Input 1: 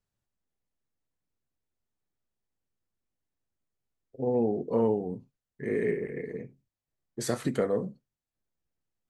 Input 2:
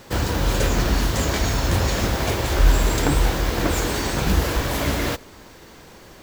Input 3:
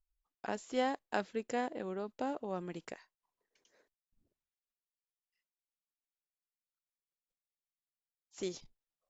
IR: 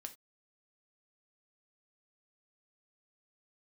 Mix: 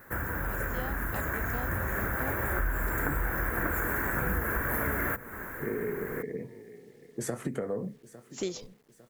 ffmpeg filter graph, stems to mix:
-filter_complex "[0:a]equalizer=f=4200:w=1.7:g=-14,acrossover=split=120[s0][s1];[s1]acompressor=threshold=0.0447:ratio=6[s2];[s0][s2]amix=inputs=2:normalize=0,volume=0.282,asplit=2[s3][s4];[s4]volume=0.1[s5];[1:a]firequalizer=gain_entry='entry(830,0);entry(1600,13);entry(2900,-15);entry(4800,-30);entry(6800,-9);entry(13000,12)':delay=0.05:min_phase=1,volume=0.282[s6];[2:a]volume=0.596[s7];[s5]aecho=0:1:853|1706|2559|3412|4265|5118:1|0.42|0.176|0.0741|0.0311|0.0131[s8];[s3][s6][s7][s8]amix=inputs=4:normalize=0,dynaudnorm=f=860:g=5:m=4.73,acrusher=bits=10:mix=0:aa=0.000001,acompressor=threshold=0.0355:ratio=4"

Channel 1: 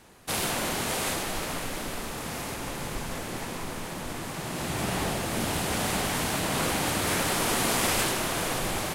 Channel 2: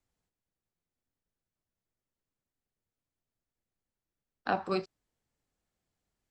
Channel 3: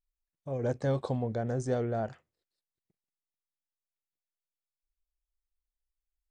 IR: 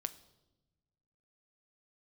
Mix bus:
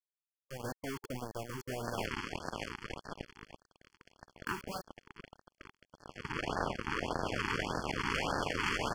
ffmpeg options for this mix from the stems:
-filter_complex "[0:a]lowpass=1900,acrusher=bits=3:mix=0:aa=0.5,adelay=1550,volume=1.12[s0];[1:a]volume=1.06[s1];[2:a]equalizer=f=2500:w=1.1:g=8,volume=0.473[s2];[s1][s2]amix=inputs=2:normalize=0,aeval=exprs='val(0)*gte(abs(val(0)),0.0178)':c=same,alimiter=limit=0.126:level=0:latency=1:release=463,volume=1[s3];[s0][s3]amix=inputs=2:normalize=0,afftfilt=real='re*lt(hypot(re,im),0.112)':imag='im*lt(hypot(re,im),0.112)':win_size=1024:overlap=0.75,asuperstop=centerf=3800:order=20:qfactor=4.5,afftfilt=real='re*(1-between(b*sr/1024,570*pow(2600/570,0.5+0.5*sin(2*PI*1.7*pts/sr))/1.41,570*pow(2600/570,0.5+0.5*sin(2*PI*1.7*pts/sr))*1.41))':imag='im*(1-between(b*sr/1024,570*pow(2600/570,0.5+0.5*sin(2*PI*1.7*pts/sr))/1.41,570*pow(2600/570,0.5+0.5*sin(2*PI*1.7*pts/sr))*1.41))':win_size=1024:overlap=0.75"

